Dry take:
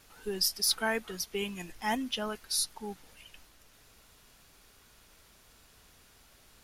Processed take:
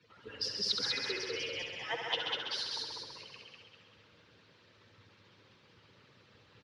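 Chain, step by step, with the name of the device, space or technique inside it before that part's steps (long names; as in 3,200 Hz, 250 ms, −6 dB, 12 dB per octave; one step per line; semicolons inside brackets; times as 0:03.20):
harmonic-percussive split with one part muted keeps percussive
0:01.85–0:02.63: high-pass filter 110 Hz
echo machine with several playback heads 67 ms, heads all three, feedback 46%, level −7 dB
frequency-shifting delay pedal into a guitar cabinet (echo with shifted repeats 195 ms, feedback 41%, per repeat +84 Hz, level −5 dB; loudspeaker in its box 90–4,300 Hz, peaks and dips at 110 Hz +9 dB, 480 Hz +7 dB, 720 Hz −8 dB)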